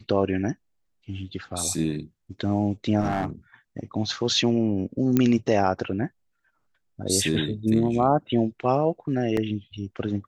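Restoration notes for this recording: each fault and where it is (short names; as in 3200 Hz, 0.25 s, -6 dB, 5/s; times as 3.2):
3–3.26 clipped -20 dBFS
5.17 pop -8 dBFS
9.37 gap 2.4 ms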